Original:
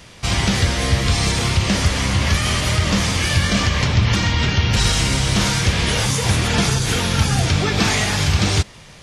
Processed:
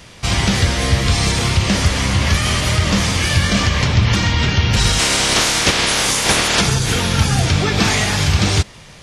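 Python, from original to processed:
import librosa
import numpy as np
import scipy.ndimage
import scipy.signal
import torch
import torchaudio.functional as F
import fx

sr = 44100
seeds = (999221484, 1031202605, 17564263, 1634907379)

y = fx.spec_clip(x, sr, under_db=20, at=(4.98, 6.6), fade=0.02)
y = F.gain(torch.from_numpy(y), 2.0).numpy()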